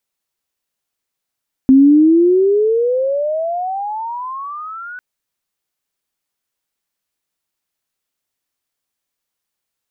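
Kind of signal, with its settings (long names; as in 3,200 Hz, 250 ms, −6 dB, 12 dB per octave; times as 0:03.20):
glide logarithmic 260 Hz → 1,500 Hz −4 dBFS → −27.5 dBFS 3.30 s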